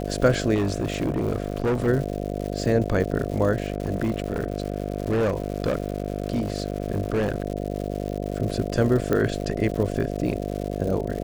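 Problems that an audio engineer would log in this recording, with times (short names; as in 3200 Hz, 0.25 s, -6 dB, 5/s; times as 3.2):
buzz 50 Hz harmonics 14 -29 dBFS
crackle 210/s -31 dBFS
0.54–1.88 clipped -19 dBFS
3.62–7.42 clipped -18.5 dBFS
9.13 pop -11 dBFS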